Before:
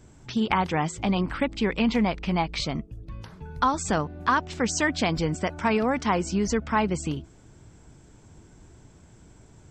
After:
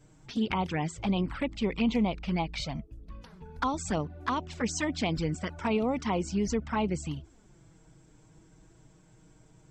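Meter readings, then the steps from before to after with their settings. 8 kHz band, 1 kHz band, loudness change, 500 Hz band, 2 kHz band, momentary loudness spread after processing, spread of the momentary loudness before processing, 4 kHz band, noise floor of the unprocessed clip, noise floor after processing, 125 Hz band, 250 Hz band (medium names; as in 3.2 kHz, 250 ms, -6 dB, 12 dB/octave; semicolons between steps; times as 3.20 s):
-6.0 dB, -7.5 dB, -5.0 dB, -5.0 dB, -8.0 dB, 10 LU, 9 LU, -5.5 dB, -53 dBFS, -60 dBFS, -3.5 dB, -3.5 dB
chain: touch-sensitive flanger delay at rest 7.2 ms, full sweep at -19.5 dBFS; trim -3 dB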